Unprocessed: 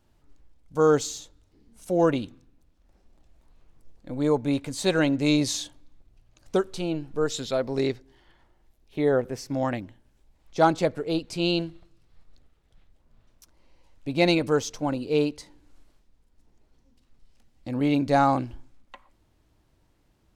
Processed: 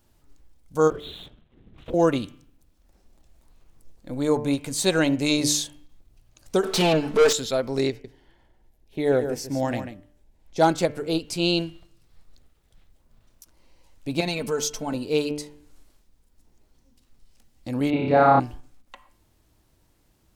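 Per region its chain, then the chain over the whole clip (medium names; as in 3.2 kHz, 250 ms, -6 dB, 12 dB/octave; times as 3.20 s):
0.90–1.94 s: LPC vocoder at 8 kHz whisper + compression 10:1, threshold -35 dBFS + waveshaping leveller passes 1
6.63–7.33 s: comb 4.6 ms, depth 71% + overdrive pedal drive 28 dB, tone 1.6 kHz, clips at -10.5 dBFS
7.90–10.68 s: peaking EQ 1.2 kHz -8.5 dB 0.37 oct + delay 142 ms -9 dB + tape noise reduction on one side only decoder only
14.20–14.94 s: compression 3:1, threshold -26 dBFS + comb 4.6 ms, depth 67%
17.90–18.40 s: high-pass 61 Hz + distance through air 460 m + flutter echo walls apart 5.2 m, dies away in 1.3 s
whole clip: treble shelf 6.7 kHz +11.5 dB; de-hum 148.1 Hz, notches 22; endings held to a fixed fall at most 380 dB/s; trim +1.5 dB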